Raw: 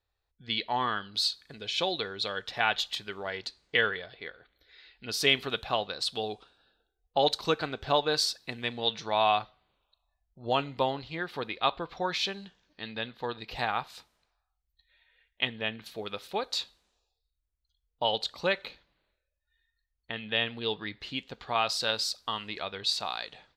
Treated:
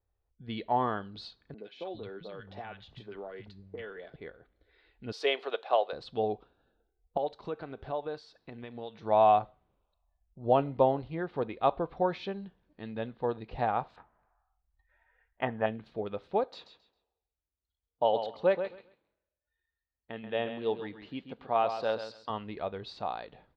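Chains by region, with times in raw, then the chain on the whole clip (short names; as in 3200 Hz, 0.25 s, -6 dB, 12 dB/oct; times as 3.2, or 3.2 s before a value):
1.54–4.16 compressor 3:1, threshold -36 dBFS + three bands offset in time mids, highs, lows 40/400 ms, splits 210/1100 Hz
5.12–5.93 HPF 430 Hz 24 dB/oct + high shelf 2800 Hz +8.5 dB
7.17–9.03 low shelf 300 Hz -7.5 dB + compressor 2:1, threshold -39 dBFS
13.96–15.66 LPF 2900 Hz 24 dB/oct + band shelf 1100 Hz +10.5 dB
16.44–22.3 HPF 270 Hz 6 dB/oct + feedback echo 0.134 s, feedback 22%, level -9 dB
whole clip: dynamic EQ 640 Hz, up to +6 dB, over -40 dBFS, Q 1.2; LPF 3600 Hz 12 dB/oct; tilt shelf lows +9.5 dB, about 1200 Hz; gain -5.5 dB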